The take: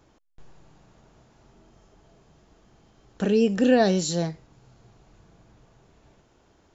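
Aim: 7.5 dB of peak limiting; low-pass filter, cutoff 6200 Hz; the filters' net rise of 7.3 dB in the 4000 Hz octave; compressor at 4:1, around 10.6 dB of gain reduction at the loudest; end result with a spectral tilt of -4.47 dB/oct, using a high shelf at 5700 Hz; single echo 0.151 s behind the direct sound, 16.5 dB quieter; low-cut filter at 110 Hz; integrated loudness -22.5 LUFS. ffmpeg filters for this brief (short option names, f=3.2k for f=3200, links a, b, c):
-af "highpass=110,lowpass=6.2k,equalizer=f=4k:t=o:g=7.5,highshelf=f=5.7k:g=5.5,acompressor=threshold=-27dB:ratio=4,alimiter=limit=-24dB:level=0:latency=1,aecho=1:1:151:0.15,volume=11.5dB"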